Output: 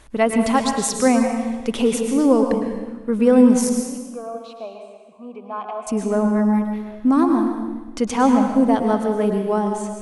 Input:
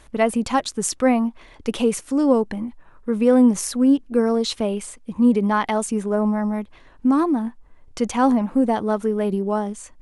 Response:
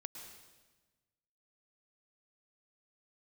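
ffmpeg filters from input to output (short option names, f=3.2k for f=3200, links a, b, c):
-filter_complex "[0:a]asettb=1/sr,asplit=3[a][b][c];[a]atrim=end=3.694[d];[b]atrim=start=3.69:end=5.87,asetpts=PTS-STARTPTS,afade=t=in:d=0.004:c=qsin,afade=t=out:st=2.176:d=0.004:c=qsin,asplit=3[e][f][g];[e]bandpass=f=730:t=q:w=8,volume=0dB[h];[f]bandpass=f=1.09k:t=q:w=8,volume=-6dB[i];[g]bandpass=f=2.44k:t=q:w=8,volume=-9dB[j];[h][i][j]amix=inputs=3:normalize=0[k];[c]atrim=start=5.866[l];[d][k]acrossfade=d=0.004:c1=hsin:c2=qsin[m];[m][l]acrossfade=d=0.004:c1=qsin:c2=hsin[n];[1:a]atrim=start_sample=2205[o];[n][o]afir=irnorm=-1:irlink=0,volume=6dB"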